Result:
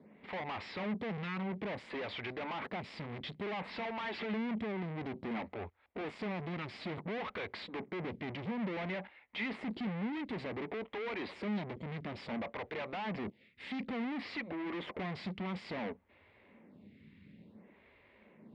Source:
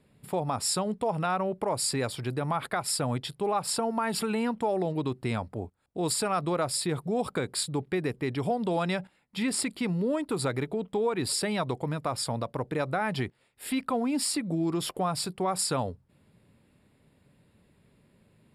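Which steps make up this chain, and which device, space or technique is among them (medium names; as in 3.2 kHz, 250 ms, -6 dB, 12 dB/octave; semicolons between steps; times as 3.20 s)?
vibe pedal into a guitar amplifier (lamp-driven phase shifter 0.57 Hz; valve stage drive 48 dB, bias 0.65; cabinet simulation 78–3500 Hz, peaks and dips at 130 Hz -9 dB, 210 Hz +7 dB, 1.4 kHz -4 dB, 2.1 kHz +8 dB); trim +10 dB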